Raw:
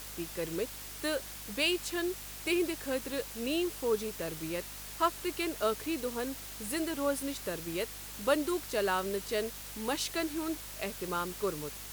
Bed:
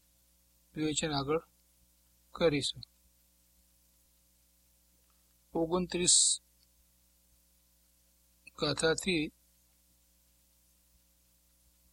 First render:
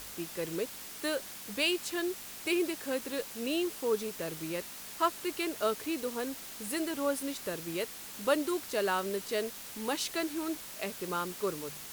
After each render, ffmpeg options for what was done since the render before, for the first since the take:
-af "bandreject=f=50:t=h:w=4,bandreject=f=100:t=h:w=4,bandreject=f=150:t=h:w=4"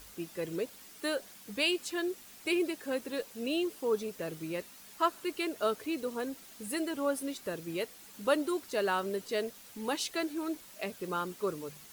-af "afftdn=nr=9:nf=-45"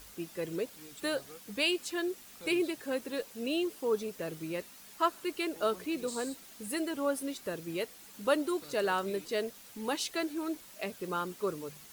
-filter_complex "[1:a]volume=-20dB[a];[0:a][a]amix=inputs=2:normalize=0"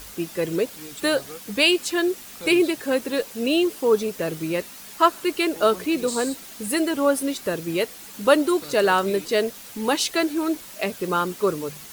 -af "volume=11.5dB"

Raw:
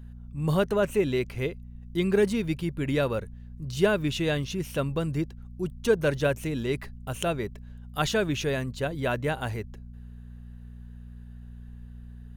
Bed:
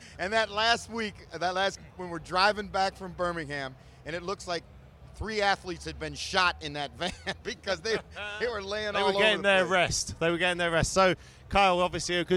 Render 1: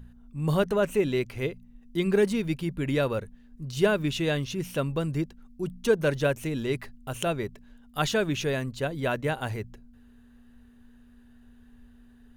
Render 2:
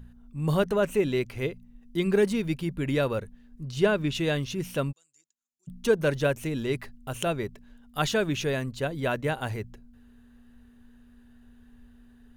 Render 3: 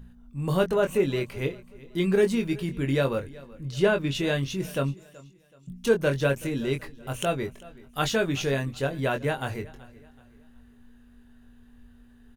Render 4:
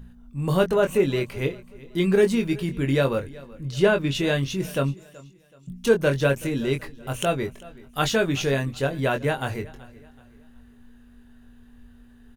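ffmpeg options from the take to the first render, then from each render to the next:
-af "bandreject=f=60:t=h:w=4,bandreject=f=120:t=h:w=4,bandreject=f=180:t=h:w=4"
-filter_complex "[0:a]asettb=1/sr,asplit=3[a][b][c];[a]atrim=end=3.634[d];[b]atrim=start=3.63:end=4.15,asetpts=PTS-STARTPTS,afade=t=in:d=0.004:c=qsin,afade=t=out:st=0.516:d=0.004:c=qsin,highshelf=f=9.7k:g=-11.5[e];[c]atrim=start=4.146[f];[d][e]acrossfade=d=0.004:c1=hsin:c2=qsin[g];[g][f]acrossfade=d=0.004:c1=qsin:c2=hsin,asplit=3[h][i][j];[h]afade=t=out:st=4.91:d=0.02[k];[i]bandpass=f=7k:t=q:w=12,afade=t=in:st=4.91:d=0.02,afade=t=out:st=5.67:d=0.02[l];[j]afade=t=in:st=5.67:d=0.02[m];[k][l][m]amix=inputs=3:normalize=0"
-filter_complex "[0:a]asplit=2[a][b];[b]adelay=22,volume=-6dB[c];[a][c]amix=inputs=2:normalize=0,aecho=1:1:377|754|1131:0.0891|0.033|0.0122"
-af "volume=3dB"

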